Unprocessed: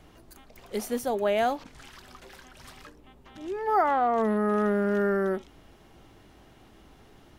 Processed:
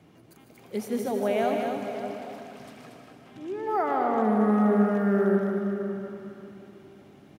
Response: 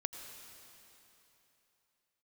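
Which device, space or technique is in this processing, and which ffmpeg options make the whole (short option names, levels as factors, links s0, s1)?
stadium PA: -filter_complex "[0:a]highpass=f=120:w=0.5412,highpass=f=120:w=1.3066,lowshelf=f=390:g=11.5,equalizer=f=2300:t=o:w=0.29:g=5,asplit=2[s0][s1];[s1]adelay=583.1,volume=0.282,highshelf=f=4000:g=-13.1[s2];[s0][s2]amix=inputs=2:normalize=0,aecho=1:1:151.6|233.2:0.316|0.501[s3];[1:a]atrim=start_sample=2205[s4];[s3][s4]afir=irnorm=-1:irlink=0,volume=0.562"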